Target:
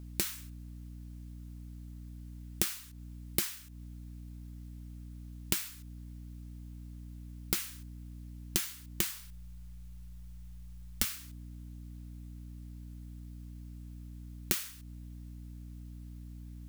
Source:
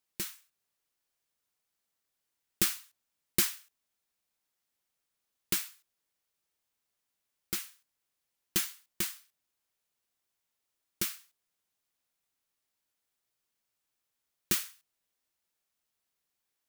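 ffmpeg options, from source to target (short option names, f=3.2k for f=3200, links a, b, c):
-filter_complex "[0:a]aeval=exprs='val(0)+0.00112*(sin(2*PI*60*n/s)+sin(2*PI*2*60*n/s)/2+sin(2*PI*3*60*n/s)/3+sin(2*PI*4*60*n/s)/4+sin(2*PI*5*60*n/s)/5)':c=same,acompressor=threshold=-43dB:ratio=12,asettb=1/sr,asplit=3[a][b][c];[a]atrim=end=9.114[d];[b]atrim=start=9.11:end=11.05,asetpts=PTS-STARTPTS,afade=t=in:d=0.004:c=qsin,afade=t=out:st=1.936:d=0.004:c=qsin,afreqshift=-120[e];[c]atrim=start=11.046[f];[d][e]acrossfade=d=0.004:c1=hsin:c2=qsin[g];[g][f]acrossfade=d=0.004:c1=qsin:c2=hsin,volume=14.5dB"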